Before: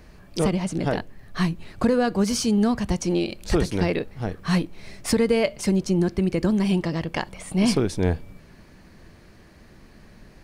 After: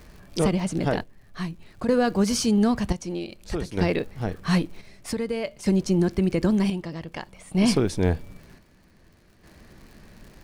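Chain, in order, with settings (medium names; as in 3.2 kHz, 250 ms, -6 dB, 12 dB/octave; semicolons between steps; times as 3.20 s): crackle 110 per s -41 dBFS; square tremolo 0.53 Hz, depth 60%, duty 55%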